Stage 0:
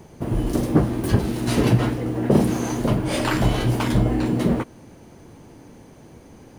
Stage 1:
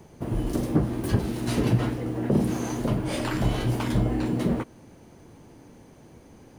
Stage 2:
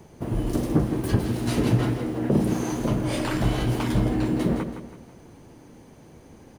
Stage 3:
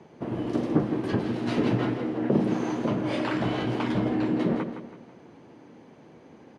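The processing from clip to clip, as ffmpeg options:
-filter_complex "[0:a]acrossover=split=370[a][b];[b]acompressor=threshold=-24dB:ratio=6[c];[a][c]amix=inputs=2:normalize=0,volume=-4.5dB"
-af "aecho=1:1:164|328|492|656:0.335|0.137|0.0563|0.0231,volume=1dB"
-af "highpass=180,lowpass=3.5k"

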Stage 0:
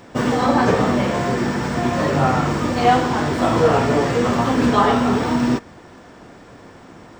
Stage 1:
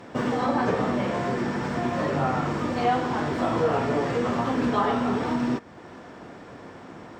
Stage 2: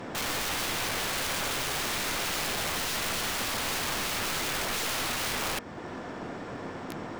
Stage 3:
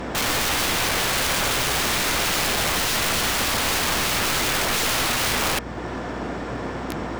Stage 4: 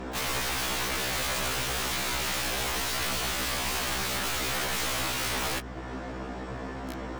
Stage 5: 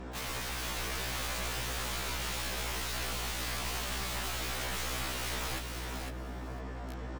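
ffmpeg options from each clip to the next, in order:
-af "highpass=f=110:p=1,aemphasis=mode=reproduction:type=cd,acompressor=threshold=-34dB:ratio=1.5"
-af "alimiter=limit=-21.5dB:level=0:latency=1:release=19,aeval=exprs='(mod(35.5*val(0)+1,2)-1)/35.5':c=same,aeval=exprs='0.0282*(cos(1*acos(clip(val(0)/0.0282,-1,1)))-cos(1*PI/2))+0.00355*(cos(2*acos(clip(val(0)/0.0282,-1,1)))-cos(2*PI/2))':c=same,volume=4.5dB"
-af "aeval=exprs='val(0)+0.00501*(sin(2*PI*60*n/s)+sin(2*PI*2*60*n/s)/2+sin(2*PI*3*60*n/s)/3+sin(2*PI*4*60*n/s)/4+sin(2*PI*5*60*n/s)/5)':c=same,volume=8.5dB"
-af "afftfilt=real='re*1.73*eq(mod(b,3),0)':imag='im*1.73*eq(mod(b,3),0)':win_size=2048:overlap=0.75,volume=-5.5dB"
-filter_complex "[0:a]aeval=exprs='val(0)+0.00891*(sin(2*PI*60*n/s)+sin(2*PI*2*60*n/s)/2+sin(2*PI*3*60*n/s)/3+sin(2*PI*4*60*n/s)/4+sin(2*PI*5*60*n/s)/5)':c=same,asplit=2[a][b];[b]aecho=0:1:502|1004|1506:0.562|0.0956|0.0163[c];[a][c]amix=inputs=2:normalize=0,volume=-8dB"

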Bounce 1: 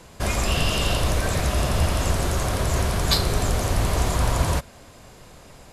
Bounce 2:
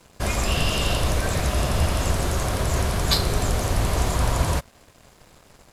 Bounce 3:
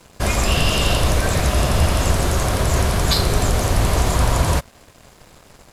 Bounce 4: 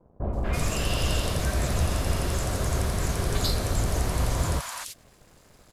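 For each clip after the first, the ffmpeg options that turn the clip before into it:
-af "aeval=exprs='sgn(val(0))*max(abs(val(0))-0.00376,0)':c=same"
-af "alimiter=level_in=9.5dB:limit=-1dB:release=50:level=0:latency=1,volume=-4.5dB"
-filter_complex "[0:a]acrossover=split=900|2900[a][b][c];[b]adelay=240[d];[c]adelay=330[e];[a][d][e]amix=inputs=3:normalize=0,volume=-8dB"

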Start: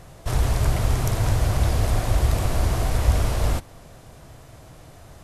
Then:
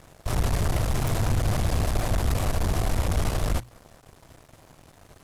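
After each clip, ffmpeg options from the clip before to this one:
-af "aeval=exprs='sgn(val(0))*max(abs(val(0))-0.00531,0)':c=same,aeval=exprs='(tanh(12.6*val(0)+0.5)-tanh(0.5))/12.6':c=same,bandreject=f=60:t=h:w=6,bandreject=f=120:t=h:w=6,volume=3dB"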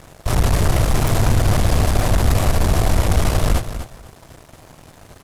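-af "aecho=1:1:247|494:0.299|0.0537,volume=8dB"

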